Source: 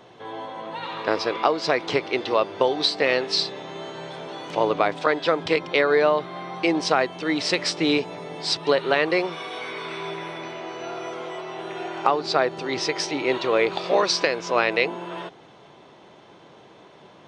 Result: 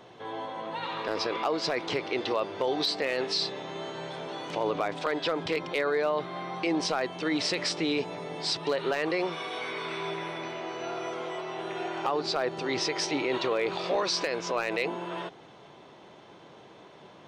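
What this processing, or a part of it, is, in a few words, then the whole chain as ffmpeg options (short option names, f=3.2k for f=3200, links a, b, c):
clipper into limiter: -af "asoftclip=type=hard:threshold=-10dB,alimiter=limit=-17dB:level=0:latency=1:release=23,volume=-2dB"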